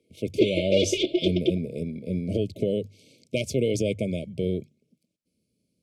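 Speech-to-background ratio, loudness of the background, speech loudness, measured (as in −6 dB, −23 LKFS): −2.5 dB, −26.0 LKFS, −28.5 LKFS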